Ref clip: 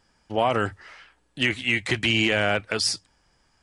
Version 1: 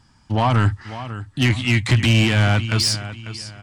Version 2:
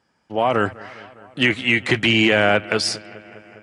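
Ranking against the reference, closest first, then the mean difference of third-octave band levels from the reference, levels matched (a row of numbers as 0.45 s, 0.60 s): 2, 1; 4.0 dB, 6.0 dB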